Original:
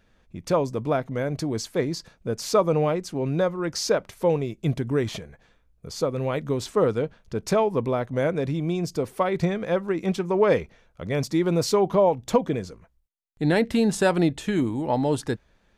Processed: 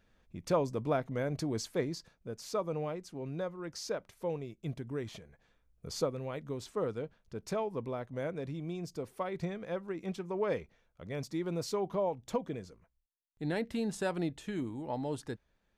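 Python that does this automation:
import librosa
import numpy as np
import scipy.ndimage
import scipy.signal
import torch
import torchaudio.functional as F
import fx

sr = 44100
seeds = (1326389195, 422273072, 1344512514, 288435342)

y = fx.gain(x, sr, db=fx.line((1.7, -7.0), (2.32, -14.0), (5.19, -14.0), (5.96, -4.0), (6.21, -13.0)))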